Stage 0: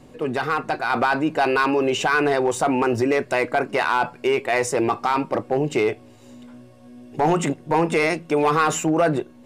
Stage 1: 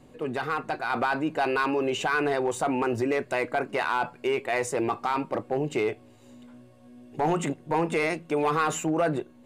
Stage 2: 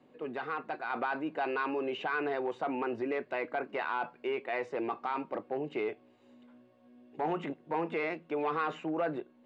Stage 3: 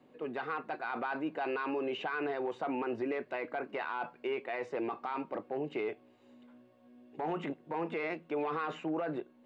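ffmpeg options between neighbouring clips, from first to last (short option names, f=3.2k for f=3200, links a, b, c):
-af "equalizer=f=5.4k:t=o:w=0.22:g=-6,volume=-6dB"
-filter_complex "[0:a]acrossover=split=5200[a][b];[b]acompressor=threshold=-60dB:ratio=4:attack=1:release=60[c];[a][c]amix=inputs=2:normalize=0,acrossover=split=170 4200:gain=0.1 1 0.1[d][e][f];[d][e][f]amix=inputs=3:normalize=0,volume=-7dB"
-af "alimiter=level_in=2.5dB:limit=-24dB:level=0:latency=1:release=25,volume=-2.5dB"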